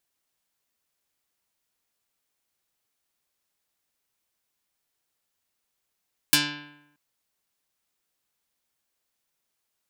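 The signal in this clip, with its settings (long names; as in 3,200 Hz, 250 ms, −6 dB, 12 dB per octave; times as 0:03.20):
Karplus-Strong string D3, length 0.63 s, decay 0.87 s, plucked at 0.23, dark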